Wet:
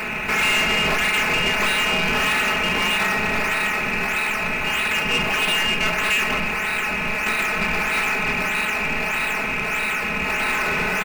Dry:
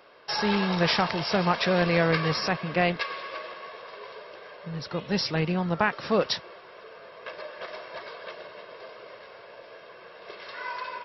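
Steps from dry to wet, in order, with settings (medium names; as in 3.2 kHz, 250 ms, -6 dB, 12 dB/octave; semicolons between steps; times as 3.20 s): spectral levelling over time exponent 0.4; frequency inversion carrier 3 kHz; in parallel at -6 dB: decimation with a swept rate 13×, swing 100% 1.6 Hz; on the sum: peak limiter -8 dBFS, peak gain reduction 6.5 dB; comb 4.7 ms, depth 84%; on a send at -8 dB: reverberation, pre-delay 15 ms; on the sum: saturation -15 dBFS, distortion -13 dB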